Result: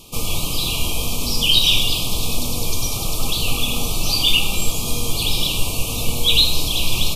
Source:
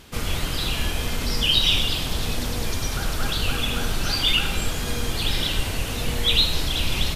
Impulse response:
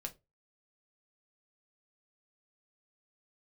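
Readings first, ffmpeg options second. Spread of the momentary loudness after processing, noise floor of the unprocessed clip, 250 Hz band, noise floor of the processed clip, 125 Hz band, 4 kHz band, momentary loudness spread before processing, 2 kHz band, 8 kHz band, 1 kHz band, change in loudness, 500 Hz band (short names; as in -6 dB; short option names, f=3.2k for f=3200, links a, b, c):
9 LU, -28 dBFS, +2.0 dB, -25 dBFS, +1.5 dB, +4.5 dB, 9 LU, +1.0 dB, +8.5 dB, +1.0 dB, +4.5 dB, +1.5 dB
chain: -filter_complex "[0:a]asuperstop=centerf=1700:order=20:qfactor=1.7,highshelf=f=5.4k:g=10,asplit=2[a][b];[1:a]atrim=start_sample=2205,asetrate=37926,aresample=44100[c];[b][c]afir=irnorm=-1:irlink=0,volume=-0.5dB[d];[a][d]amix=inputs=2:normalize=0,volume=-3dB"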